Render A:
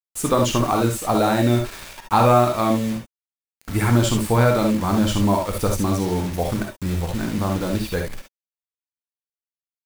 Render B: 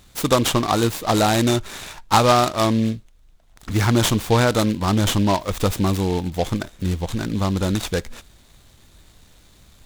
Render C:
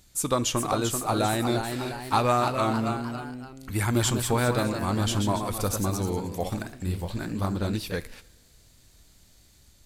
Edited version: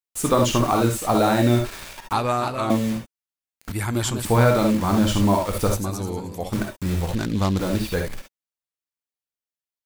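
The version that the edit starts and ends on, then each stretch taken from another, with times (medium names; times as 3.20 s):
A
2.13–2.70 s: from C
3.72–4.25 s: from C
5.77–6.53 s: from C
7.15–7.59 s: from B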